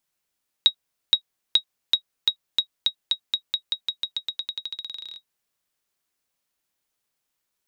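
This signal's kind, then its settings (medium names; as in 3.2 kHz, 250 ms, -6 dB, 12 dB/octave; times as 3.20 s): bouncing ball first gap 0.47 s, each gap 0.9, 3.8 kHz, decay 85 ms -5 dBFS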